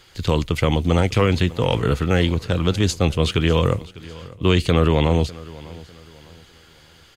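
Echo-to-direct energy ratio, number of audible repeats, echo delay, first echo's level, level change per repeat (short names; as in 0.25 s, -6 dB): -19.5 dB, 2, 0.6 s, -20.0 dB, -9.0 dB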